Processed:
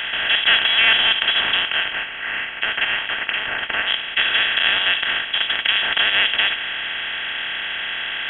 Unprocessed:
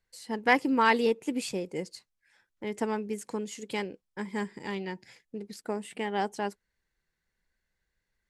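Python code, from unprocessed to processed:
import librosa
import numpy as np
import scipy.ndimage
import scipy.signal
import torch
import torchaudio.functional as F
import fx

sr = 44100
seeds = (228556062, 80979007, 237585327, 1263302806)

y = fx.bin_compress(x, sr, power=0.2)
y = fx.highpass(y, sr, hz=fx.line((1.62, 520.0), (3.86, 1300.0)), slope=6, at=(1.62, 3.86), fade=0.02)
y = fx.freq_invert(y, sr, carrier_hz=3600)
y = y * 10.0 ** (2.5 / 20.0)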